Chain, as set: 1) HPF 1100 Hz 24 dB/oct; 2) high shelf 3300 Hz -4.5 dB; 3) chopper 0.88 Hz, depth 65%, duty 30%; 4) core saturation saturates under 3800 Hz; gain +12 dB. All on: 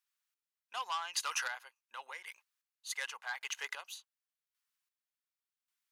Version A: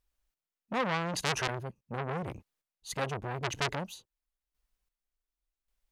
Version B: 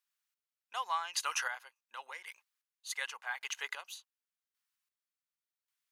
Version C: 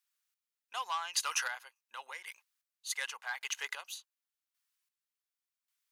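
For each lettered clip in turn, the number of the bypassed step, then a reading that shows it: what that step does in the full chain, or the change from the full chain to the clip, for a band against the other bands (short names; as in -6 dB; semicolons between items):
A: 1, 500 Hz band +16.5 dB; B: 4, 1 kHz band +2.0 dB; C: 2, 8 kHz band +2.5 dB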